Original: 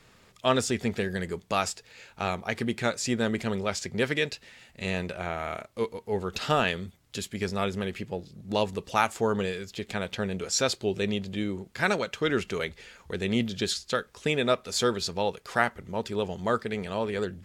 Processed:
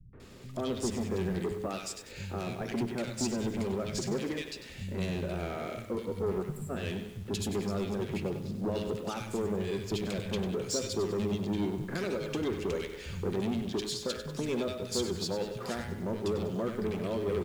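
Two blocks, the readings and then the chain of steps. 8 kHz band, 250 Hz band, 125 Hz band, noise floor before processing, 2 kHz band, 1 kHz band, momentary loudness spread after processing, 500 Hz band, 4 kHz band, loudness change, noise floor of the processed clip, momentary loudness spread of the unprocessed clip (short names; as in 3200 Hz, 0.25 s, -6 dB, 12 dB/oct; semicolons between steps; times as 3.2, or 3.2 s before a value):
-5.0 dB, -1.5 dB, -1.0 dB, -60 dBFS, -12.0 dB, -11.0 dB, 5 LU, -4.0 dB, -7.0 dB, -4.5 dB, -47 dBFS, 9 LU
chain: de-hum 105.2 Hz, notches 36; compressor 6:1, threshold -34 dBFS, peak gain reduction 15.5 dB; resonant low shelf 560 Hz +7.5 dB, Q 1.5; notch 460 Hz, Q 12; soft clip -30 dBFS, distortion -10 dB; spectral delete 6.3–6.56, 250–7200 Hz; three bands offset in time lows, mids, highs 0.13/0.2 s, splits 160/1700 Hz; lo-fi delay 97 ms, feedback 55%, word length 9-bit, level -10 dB; gain +3.5 dB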